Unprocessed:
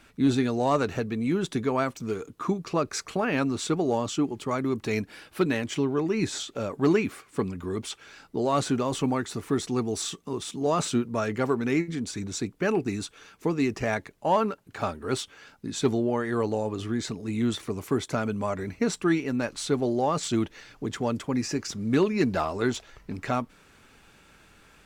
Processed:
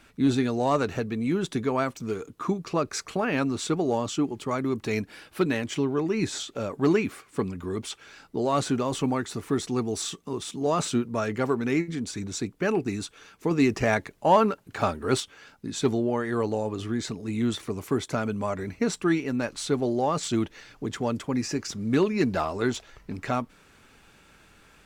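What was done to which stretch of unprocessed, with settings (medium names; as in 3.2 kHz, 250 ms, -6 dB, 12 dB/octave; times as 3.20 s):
13.51–15.20 s: gain +4 dB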